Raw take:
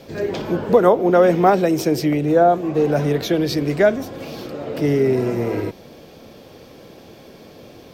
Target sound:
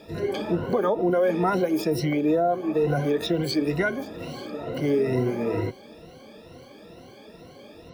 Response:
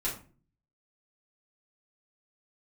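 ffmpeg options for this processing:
-filter_complex "[0:a]afftfilt=real='re*pow(10,19/40*sin(2*PI*(2*log(max(b,1)*sr/1024/100)/log(2)-(2.2)*(pts-256)/sr)))':imag='im*pow(10,19/40*sin(2*PI*(2*log(max(b,1)*sr/1024/100)/log(2)-(2.2)*(pts-256)/sr)))':win_size=1024:overlap=0.75,acrossover=split=6500[link_01][link_02];[link_01]alimiter=limit=-7.5dB:level=0:latency=1:release=76[link_03];[link_02]asetrate=76340,aresample=44100,atempo=0.577676[link_04];[link_03][link_04]amix=inputs=2:normalize=0,volume=-7dB"

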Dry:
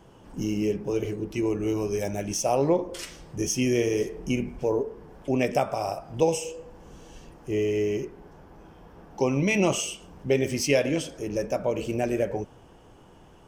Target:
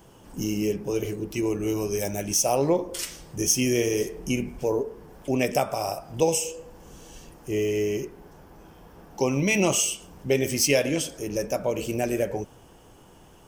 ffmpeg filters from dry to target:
ffmpeg -i in.wav -af "aemphasis=mode=production:type=50kf" out.wav

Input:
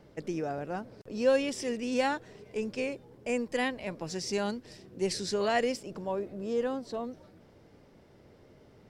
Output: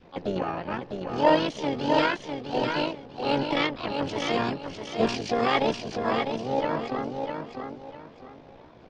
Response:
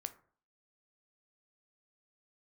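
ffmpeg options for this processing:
-filter_complex "[0:a]tremolo=f=46:d=0.824,asplit=4[link_01][link_02][link_03][link_04];[link_02]asetrate=22050,aresample=44100,atempo=2,volume=-5dB[link_05];[link_03]asetrate=37084,aresample=44100,atempo=1.18921,volume=-10dB[link_06];[link_04]asetrate=66075,aresample=44100,atempo=0.66742,volume=-3dB[link_07];[link_01][link_05][link_06][link_07]amix=inputs=4:normalize=0,adynamicequalizer=threshold=0.00631:dfrequency=650:dqfactor=0.96:tfrequency=650:tqfactor=0.96:attack=5:release=100:ratio=0.375:range=1.5:mode=cutabove:tftype=bell,asetrate=50951,aresample=44100,atempo=0.865537,lowpass=frequency=4600:width=0.5412,lowpass=frequency=4600:width=1.3066,lowshelf=frequency=370:gain=-3.5,asplit=2[link_08][link_09];[link_09]aecho=0:1:652|1304|1956|2608:0.531|0.149|0.0416|0.0117[link_10];[link_08][link_10]amix=inputs=2:normalize=0,volume=7.5dB"

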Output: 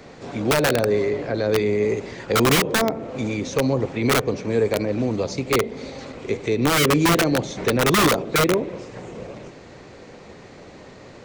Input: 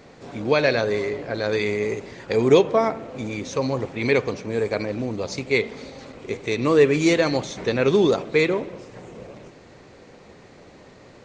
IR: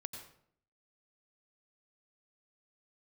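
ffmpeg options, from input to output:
-filter_complex "[0:a]acrossover=split=270|660[link_01][link_02][link_03];[link_02]aeval=exprs='(mod(8.41*val(0)+1,2)-1)/8.41':channel_layout=same[link_04];[link_03]acompressor=threshold=-36dB:ratio=6[link_05];[link_01][link_04][link_05]amix=inputs=3:normalize=0,volume=4.5dB"

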